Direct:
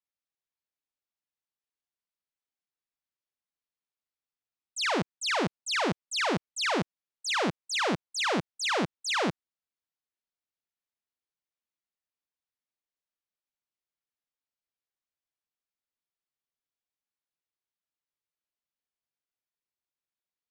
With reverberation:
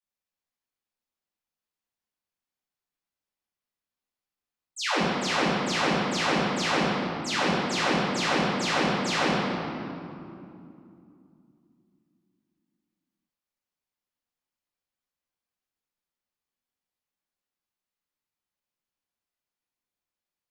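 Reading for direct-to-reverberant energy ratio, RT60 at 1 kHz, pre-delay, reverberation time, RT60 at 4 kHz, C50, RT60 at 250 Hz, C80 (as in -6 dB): -9.5 dB, 2.6 s, 3 ms, 2.7 s, 1.6 s, -2.0 dB, 3.9 s, 0.0 dB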